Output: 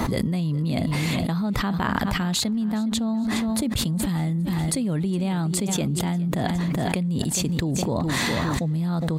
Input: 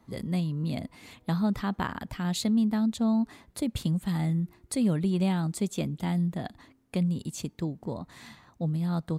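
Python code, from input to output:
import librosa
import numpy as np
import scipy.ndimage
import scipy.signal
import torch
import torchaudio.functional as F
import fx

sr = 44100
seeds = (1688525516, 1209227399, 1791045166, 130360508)

y = fx.echo_feedback(x, sr, ms=413, feedback_pct=37, wet_db=-16)
y = fx.env_flatten(y, sr, amount_pct=100)
y = y * librosa.db_to_amplitude(-2.0)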